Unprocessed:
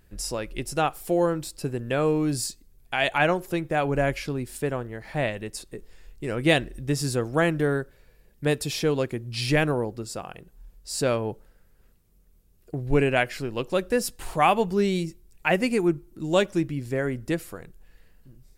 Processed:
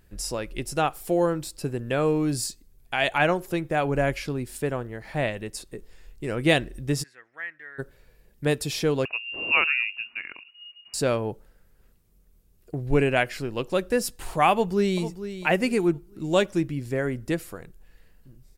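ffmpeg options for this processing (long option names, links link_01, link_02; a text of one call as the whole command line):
ffmpeg -i in.wav -filter_complex "[0:a]asplit=3[link_01][link_02][link_03];[link_01]afade=type=out:start_time=7.02:duration=0.02[link_04];[link_02]bandpass=frequency=1900:width_type=q:width=9,afade=type=in:start_time=7.02:duration=0.02,afade=type=out:start_time=7.78:duration=0.02[link_05];[link_03]afade=type=in:start_time=7.78:duration=0.02[link_06];[link_04][link_05][link_06]amix=inputs=3:normalize=0,asettb=1/sr,asplit=3[link_07][link_08][link_09];[link_07]atrim=end=9.054[link_10];[link_08]atrim=start=9.05:end=10.94,asetpts=PTS-STARTPTS,afade=type=in:duration=0.004:curve=qsin,afade=type=out:start_time=1.886:duration=0.004:curve=qsin,lowpass=frequency=2500:width_type=q:width=0.5098,lowpass=frequency=2500:width_type=q:width=0.6013,lowpass=frequency=2500:width_type=q:width=0.9,lowpass=frequency=2500:width_type=q:width=2.563,afreqshift=-2900[link_11];[link_09]atrim=start=10.936[link_12];[link_10][link_11]acrossfade=duration=0.004:curve1=hsin:curve2=qsin[link_13];[link_13][link_12]acrossfade=duration=0.004:curve1=qsin:curve2=hsin,asplit=2[link_14][link_15];[link_15]afade=type=in:start_time=14.52:duration=0.01,afade=type=out:start_time=15.01:duration=0.01,aecho=0:1:450|900|1350:0.266073|0.0798218|0.0239465[link_16];[link_14][link_16]amix=inputs=2:normalize=0" out.wav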